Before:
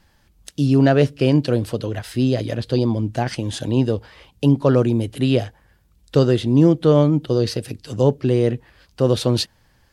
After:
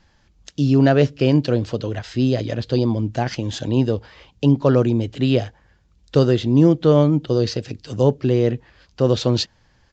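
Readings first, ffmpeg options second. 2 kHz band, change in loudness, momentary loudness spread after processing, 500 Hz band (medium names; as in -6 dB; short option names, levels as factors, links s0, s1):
0.0 dB, 0.0 dB, 11 LU, 0.0 dB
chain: -af "aresample=16000,aresample=44100"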